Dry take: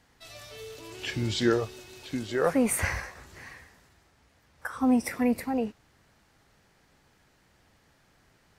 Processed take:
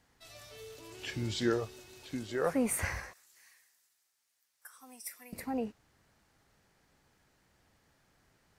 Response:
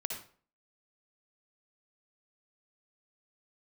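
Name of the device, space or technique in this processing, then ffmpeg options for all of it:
exciter from parts: -filter_complex "[0:a]asplit=2[link_01][link_02];[link_02]highpass=frequency=4600:poles=1,asoftclip=type=tanh:threshold=-29.5dB,highpass=2800,volume=-9dB[link_03];[link_01][link_03]amix=inputs=2:normalize=0,asettb=1/sr,asplit=3[link_04][link_05][link_06];[link_04]atrim=end=3.134[link_07];[link_05]atrim=start=3.13:end=5.33,asetpts=PTS-STARTPTS,afade=type=in:duration=0.004:curve=qsin,afade=type=out:start_time=2.196:duration=0.004:curve=qsin,aderivative[link_08];[link_06]atrim=start=5.326[link_09];[link_07][link_08]acrossfade=duration=0.004:curve1=hsin:curve2=qsin[link_10];[link_10][link_09]acrossfade=duration=0.004:curve1=qsin:curve2=hsin,volume=-6dB"

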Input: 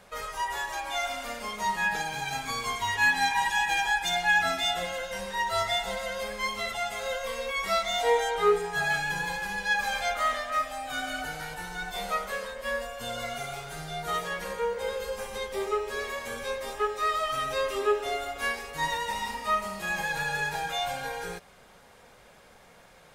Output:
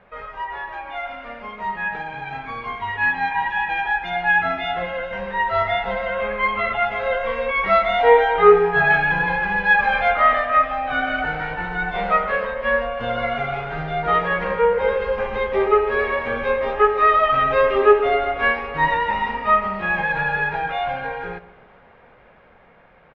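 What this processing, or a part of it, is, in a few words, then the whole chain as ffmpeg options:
action camera in a waterproof case: -filter_complex "[0:a]asettb=1/sr,asplit=3[link_01][link_02][link_03];[link_01]atrim=end=6.124[link_04];[link_02]atrim=start=6.12:end=6.85,asetpts=PTS-STARTPTS,afade=type=in:duration=0.004:curve=qsin,afade=type=out:start_time=0.726:duration=0.004:curve=qsin,equalizer=frequency=1250:width_type=o:width=0.33:gain=6,equalizer=frequency=2500:width_type=o:width=0.33:gain=4,equalizer=frequency=5000:width_type=o:width=0.33:gain=-11[link_05];[link_03]atrim=start=6.846[link_06];[link_04][link_05]acrossfade=duration=0.004:curve1=hsin:curve2=qsin[link_07];[link_07][link_06]acrossfade=duration=0.004:curve1=qsin:curve2=hsin,lowpass=frequency=2500:width=0.5412,lowpass=frequency=2500:width=1.3066,asplit=2[link_08][link_09];[link_09]adelay=131,lowpass=frequency=1100:poles=1,volume=-14dB,asplit=2[link_10][link_11];[link_11]adelay=131,lowpass=frequency=1100:poles=1,volume=0.49,asplit=2[link_12][link_13];[link_13]adelay=131,lowpass=frequency=1100:poles=1,volume=0.49,asplit=2[link_14][link_15];[link_15]adelay=131,lowpass=frequency=1100:poles=1,volume=0.49,asplit=2[link_16][link_17];[link_17]adelay=131,lowpass=frequency=1100:poles=1,volume=0.49[link_18];[link_08][link_10][link_12][link_14][link_16][link_18]amix=inputs=6:normalize=0,dynaudnorm=framelen=990:gausssize=11:maxgain=11.5dB,volume=2dB" -ar 16000 -c:a aac -b:a 64k

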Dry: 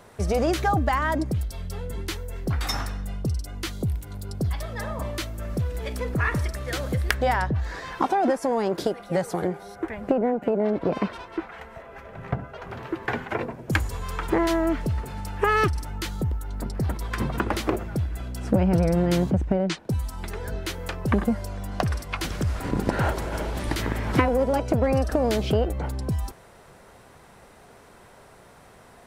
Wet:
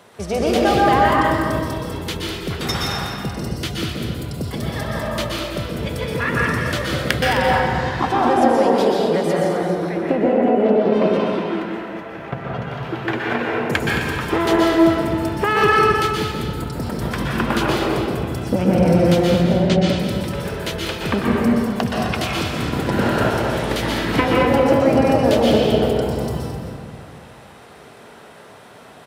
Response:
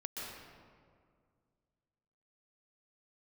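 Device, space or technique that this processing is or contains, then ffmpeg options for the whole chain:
stadium PA: -filter_complex "[0:a]highpass=130,equalizer=frequency=3200:width_type=o:width=0.83:gain=5.5,aecho=1:1:218.7|259.5:0.282|0.251[link_01];[1:a]atrim=start_sample=2205[link_02];[link_01][link_02]afir=irnorm=-1:irlink=0,volume=6.5dB"

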